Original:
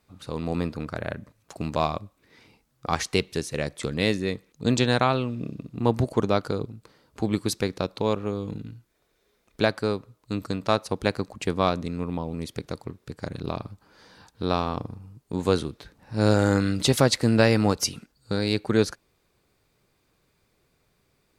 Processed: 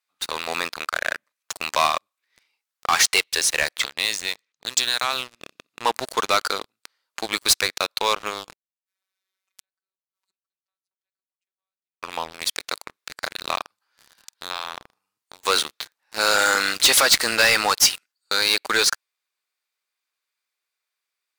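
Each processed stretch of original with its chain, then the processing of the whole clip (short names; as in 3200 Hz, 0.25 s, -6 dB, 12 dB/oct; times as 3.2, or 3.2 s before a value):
3.77–5.31 low-pass opened by the level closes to 2300 Hz, open at -16.5 dBFS + tone controls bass +7 dB, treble +11 dB + compressor 8:1, threshold -27 dBFS
8.53–12.03 compressor 5:1, threshold -30 dBFS + flipped gate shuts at -36 dBFS, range -40 dB + robotiser 190 Hz
13.61–15.46 doubler 48 ms -11.5 dB + compressor, threshold -33 dBFS
whole clip: HPF 1400 Hz 12 dB/oct; sample leveller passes 5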